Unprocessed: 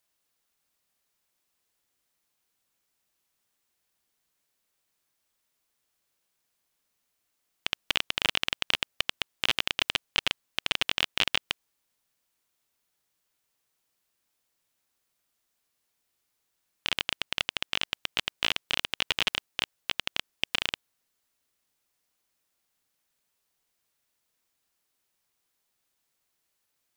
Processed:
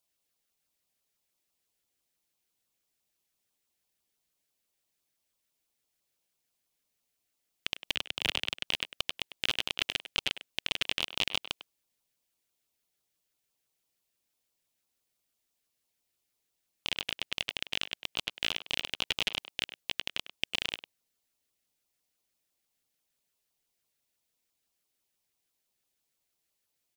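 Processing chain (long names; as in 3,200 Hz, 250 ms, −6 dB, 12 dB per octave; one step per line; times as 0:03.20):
auto-filter notch saw down 6 Hz 820–2,000 Hz
far-end echo of a speakerphone 100 ms, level −11 dB
0:07.95–0:08.63: multiband upward and downward expander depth 100%
level −3 dB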